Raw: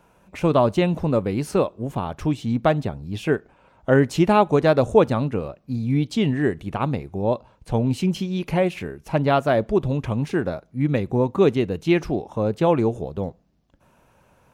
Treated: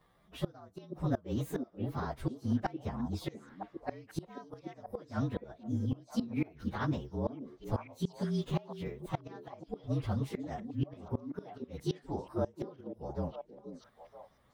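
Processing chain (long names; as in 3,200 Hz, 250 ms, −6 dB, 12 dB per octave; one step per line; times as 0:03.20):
partials spread apart or drawn together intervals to 114%
gate with flip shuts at −14 dBFS, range −26 dB
echo through a band-pass that steps 482 ms, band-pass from 310 Hz, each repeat 1.4 octaves, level −4 dB
level −7 dB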